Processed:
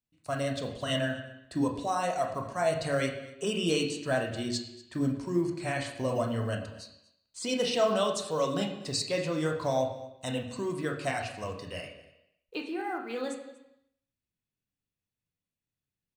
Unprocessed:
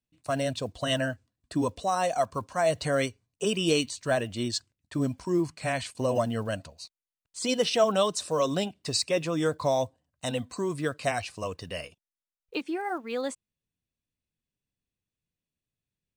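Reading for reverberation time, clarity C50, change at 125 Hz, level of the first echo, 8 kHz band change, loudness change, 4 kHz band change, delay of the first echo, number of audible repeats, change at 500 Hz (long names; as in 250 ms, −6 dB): 0.85 s, 7.0 dB, −1.0 dB, −20.5 dB, −4.5 dB, −2.5 dB, −3.0 dB, 239 ms, 1, −2.5 dB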